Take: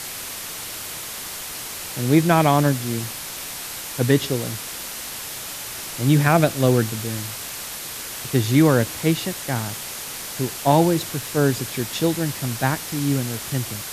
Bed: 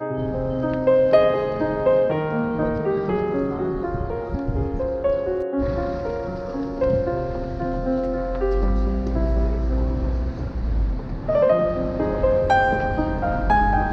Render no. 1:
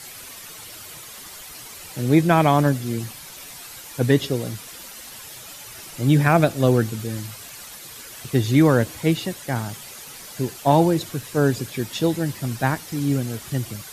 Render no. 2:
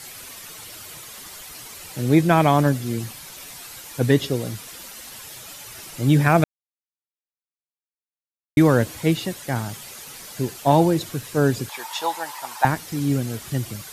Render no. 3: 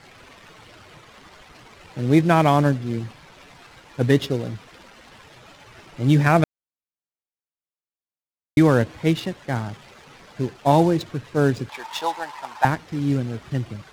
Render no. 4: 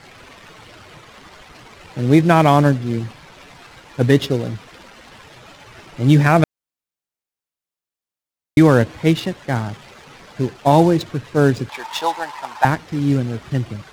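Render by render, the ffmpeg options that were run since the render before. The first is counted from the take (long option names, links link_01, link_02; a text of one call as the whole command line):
ffmpeg -i in.wav -af "afftdn=noise_reduction=10:noise_floor=-33" out.wav
ffmpeg -i in.wav -filter_complex "[0:a]asettb=1/sr,asplit=3[link_01][link_02][link_03];[link_01]atrim=end=11.694[link_04];[link_02]atrim=start=11.69:end=12.65,asetpts=PTS-STARTPTS,afade=type=in:duration=0.004:curve=qsin,afade=type=out:start_time=0.956:duration=0.004:curve=qsin,highpass=frequency=900:width_type=q:width=7.8[link_05];[link_03]atrim=start=12.646[link_06];[link_04][link_05]acrossfade=duration=0.004:curve1=hsin:curve2=qsin[link_07];[link_07][link_06]acrossfade=duration=0.004:curve1=qsin:curve2=hsin,asplit=3[link_08][link_09][link_10];[link_08]atrim=end=6.44,asetpts=PTS-STARTPTS,afade=type=out:start_time=6.436:duration=0.004:curve=hsin[link_11];[link_09]atrim=start=6.44:end=8.57,asetpts=PTS-STARTPTS,volume=0[link_12];[link_10]atrim=start=8.57,asetpts=PTS-STARTPTS,afade=type=in:duration=0.004:curve=hsin[link_13];[link_11][link_12][link_13]concat=n=3:v=0:a=1" out.wav
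ffmpeg -i in.wav -af "adynamicsmooth=sensitivity=7.5:basefreq=1500" out.wav
ffmpeg -i in.wav -af "volume=4.5dB,alimiter=limit=-1dB:level=0:latency=1" out.wav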